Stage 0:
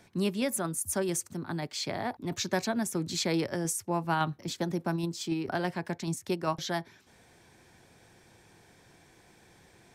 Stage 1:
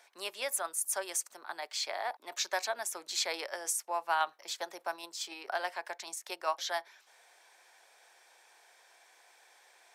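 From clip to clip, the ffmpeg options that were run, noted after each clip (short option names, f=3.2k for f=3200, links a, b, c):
-af "highpass=f=610:w=0.5412,highpass=f=610:w=1.3066"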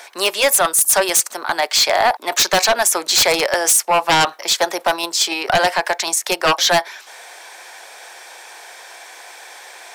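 -af "aeval=exprs='0.133*sin(PI/2*3.55*val(0)/0.133)':c=same,volume=8.5dB"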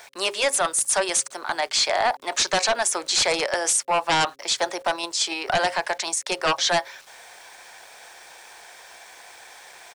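-af "aresample=22050,aresample=44100,aeval=exprs='val(0)*gte(abs(val(0)),0.0075)':c=same,bandreject=f=135.1:t=h:w=4,bandreject=f=270.2:t=h:w=4,bandreject=f=405.3:t=h:w=4,bandreject=f=540.4:t=h:w=4,volume=-6.5dB"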